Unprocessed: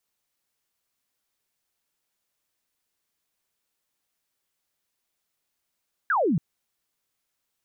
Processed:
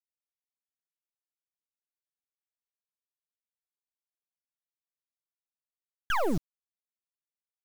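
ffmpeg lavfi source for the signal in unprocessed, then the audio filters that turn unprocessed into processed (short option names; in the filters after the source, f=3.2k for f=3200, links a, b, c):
-f lavfi -i "aevalsrc='0.106*clip(t/0.002,0,1)*clip((0.28-t)/0.002,0,1)*sin(2*PI*1700*0.28/log(140/1700)*(exp(log(140/1700)*t/0.28)-1))':d=0.28:s=44100"
-af "acrusher=bits=4:dc=4:mix=0:aa=0.000001"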